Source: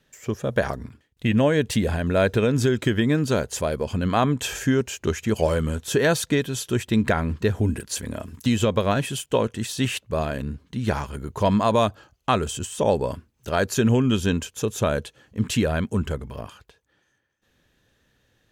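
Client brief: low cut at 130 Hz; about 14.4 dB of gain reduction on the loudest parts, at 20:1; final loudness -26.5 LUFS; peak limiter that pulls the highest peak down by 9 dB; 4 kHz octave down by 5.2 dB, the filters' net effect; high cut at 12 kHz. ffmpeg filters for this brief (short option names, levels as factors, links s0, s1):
-af "highpass=130,lowpass=12000,equalizer=f=4000:t=o:g=-7,acompressor=threshold=0.0316:ratio=20,volume=3.76,alimiter=limit=0.178:level=0:latency=1"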